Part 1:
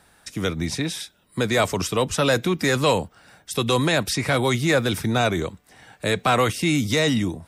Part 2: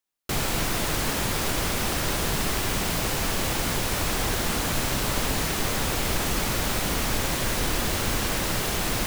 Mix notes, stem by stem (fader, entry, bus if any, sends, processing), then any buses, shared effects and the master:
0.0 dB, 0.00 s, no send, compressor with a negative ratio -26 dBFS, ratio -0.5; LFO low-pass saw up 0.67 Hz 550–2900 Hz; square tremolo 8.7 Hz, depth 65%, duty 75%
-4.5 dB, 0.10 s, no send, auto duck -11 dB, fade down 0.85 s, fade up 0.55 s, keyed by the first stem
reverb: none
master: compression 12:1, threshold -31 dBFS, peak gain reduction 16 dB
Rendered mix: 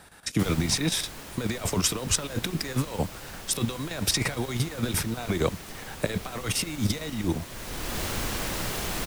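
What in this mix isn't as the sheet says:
stem 1: missing LFO low-pass saw up 0.67 Hz 550–2900 Hz; master: missing compression 12:1, threshold -31 dBFS, peak gain reduction 16 dB

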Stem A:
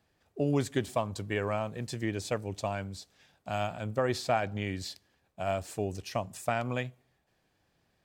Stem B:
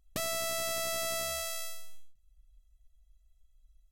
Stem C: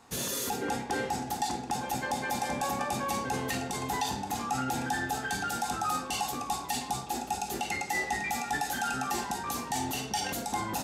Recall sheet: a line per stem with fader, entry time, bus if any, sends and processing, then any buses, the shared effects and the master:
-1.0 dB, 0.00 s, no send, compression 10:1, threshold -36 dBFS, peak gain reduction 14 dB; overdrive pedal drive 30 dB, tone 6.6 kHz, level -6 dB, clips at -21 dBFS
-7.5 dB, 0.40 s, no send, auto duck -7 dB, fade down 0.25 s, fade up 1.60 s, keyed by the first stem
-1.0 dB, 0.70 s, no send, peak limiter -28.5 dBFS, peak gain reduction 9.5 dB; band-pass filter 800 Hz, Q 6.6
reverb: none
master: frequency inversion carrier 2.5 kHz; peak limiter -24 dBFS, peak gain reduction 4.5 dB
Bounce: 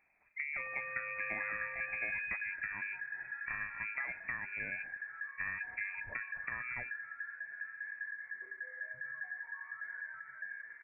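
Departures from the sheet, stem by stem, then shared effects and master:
stem A: missing overdrive pedal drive 30 dB, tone 6.6 kHz, level -6 dB, clips at -21 dBFS; stem B -7.5 dB -> -0.5 dB

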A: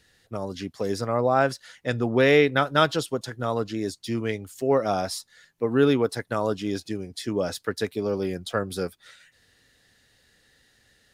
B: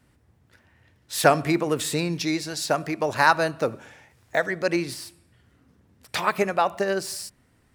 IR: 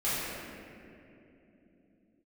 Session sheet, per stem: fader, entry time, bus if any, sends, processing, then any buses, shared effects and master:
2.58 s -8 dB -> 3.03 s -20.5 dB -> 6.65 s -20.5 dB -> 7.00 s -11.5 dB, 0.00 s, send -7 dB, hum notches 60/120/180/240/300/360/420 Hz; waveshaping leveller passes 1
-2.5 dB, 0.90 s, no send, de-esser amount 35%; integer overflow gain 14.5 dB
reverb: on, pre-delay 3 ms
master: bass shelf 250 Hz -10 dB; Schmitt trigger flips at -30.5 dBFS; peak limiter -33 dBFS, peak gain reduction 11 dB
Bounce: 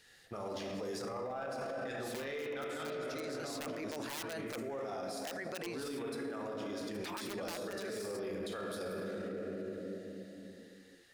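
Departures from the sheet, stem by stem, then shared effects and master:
stem A -8.0 dB -> -1.0 dB; master: missing Schmitt trigger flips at -30.5 dBFS

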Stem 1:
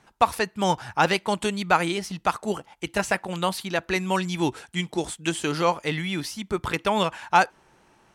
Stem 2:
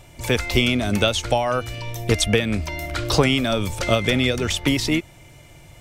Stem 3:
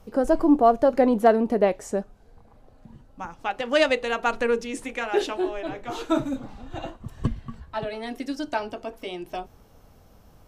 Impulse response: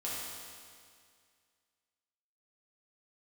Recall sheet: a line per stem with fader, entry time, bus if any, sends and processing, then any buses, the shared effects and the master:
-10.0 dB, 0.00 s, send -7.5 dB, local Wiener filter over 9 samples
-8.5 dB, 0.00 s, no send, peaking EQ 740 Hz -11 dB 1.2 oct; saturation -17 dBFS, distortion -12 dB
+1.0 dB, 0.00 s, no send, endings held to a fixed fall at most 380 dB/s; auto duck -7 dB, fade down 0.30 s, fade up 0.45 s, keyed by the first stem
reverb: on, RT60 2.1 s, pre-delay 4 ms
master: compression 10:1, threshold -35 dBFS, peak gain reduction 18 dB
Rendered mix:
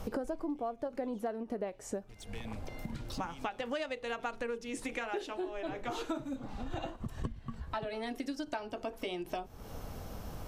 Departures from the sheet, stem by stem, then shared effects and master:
stem 1: muted; stem 2 -8.5 dB -> -18.5 dB; stem 3 +1.0 dB -> +10.0 dB; reverb: off

